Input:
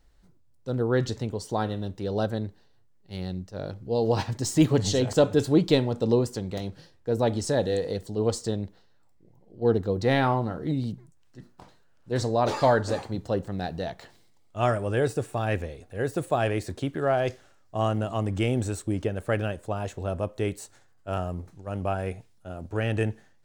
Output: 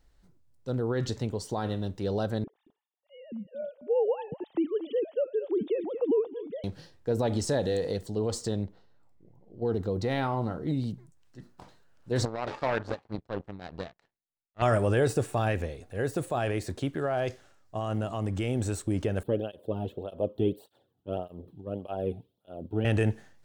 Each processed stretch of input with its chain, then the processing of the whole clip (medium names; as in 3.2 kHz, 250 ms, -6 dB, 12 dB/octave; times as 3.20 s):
2.44–6.64 s: formants replaced by sine waves + peaking EQ 1.6 kHz -11.5 dB 1.4 oct + delay 225 ms -18 dB
8.63–10.68 s: band-stop 1.7 kHz, Q 14 + tape noise reduction on one side only decoder only
12.25–14.62 s: low-pass 3.3 kHz + tremolo 3.3 Hz, depth 47% + power-law waveshaper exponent 2
19.23–22.85 s: FFT filter 510 Hz 0 dB, 1 kHz -11 dB, 2.1 kHz -22 dB, 3.3 kHz -2 dB, 6.5 kHz -30 dB, 14 kHz -6 dB + cancelling through-zero flanger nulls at 1.7 Hz, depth 2 ms
whole clip: de-esser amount 65%; peak limiter -19.5 dBFS; gain riding 2 s